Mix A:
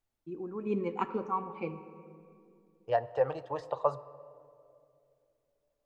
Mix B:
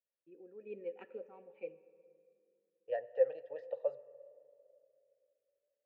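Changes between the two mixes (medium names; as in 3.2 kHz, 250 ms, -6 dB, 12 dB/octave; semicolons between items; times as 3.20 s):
first voice: send -6.0 dB; master: add vowel filter e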